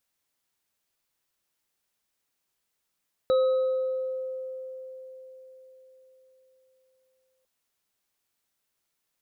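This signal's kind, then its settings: sine partials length 4.15 s, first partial 520 Hz, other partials 1270/3900 Hz, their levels -14/-20 dB, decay 4.57 s, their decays 1.75/1.13 s, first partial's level -18 dB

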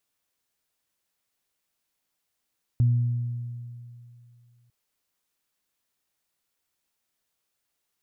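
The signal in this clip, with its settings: additive tone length 1.90 s, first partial 120 Hz, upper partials -19 dB, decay 2.56 s, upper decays 1.89 s, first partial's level -16 dB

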